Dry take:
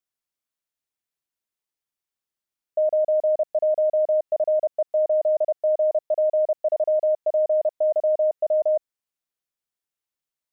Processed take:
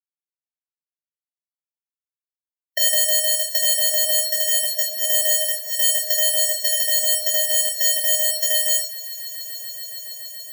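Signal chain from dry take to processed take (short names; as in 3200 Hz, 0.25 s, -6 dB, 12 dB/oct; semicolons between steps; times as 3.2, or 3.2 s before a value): half-waves squared off; recorder AGC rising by 18 dB/s; expander -29 dBFS; inverse Chebyshev high-pass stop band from 370 Hz, stop band 50 dB; tilt +5.5 dB/oct; sample leveller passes 3; auto swell 0.388 s; compressor 10:1, threshold -18 dBFS, peak gain reduction 25.5 dB; on a send: swelling echo 0.141 s, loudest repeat 8, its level -16.5 dB; on the sum: shoebox room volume 3400 m³, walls furnished, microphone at 6 m; spectral expander 1.5:1; gain -1 dB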